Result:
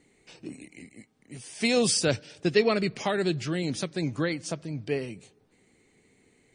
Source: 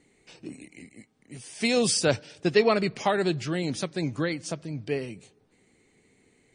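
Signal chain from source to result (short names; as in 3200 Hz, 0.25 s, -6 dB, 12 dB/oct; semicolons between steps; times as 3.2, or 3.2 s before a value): 1.95–4.07 dynamic EQ 890 Hz, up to -6 dB, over -38 dBFS, Q 1.1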